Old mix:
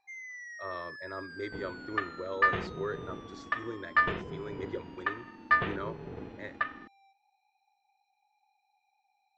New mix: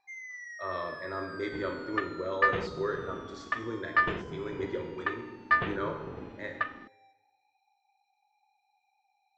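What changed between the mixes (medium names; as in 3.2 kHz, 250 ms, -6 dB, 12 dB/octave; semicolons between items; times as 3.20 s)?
speech: send on; first sound: send +8.5 dB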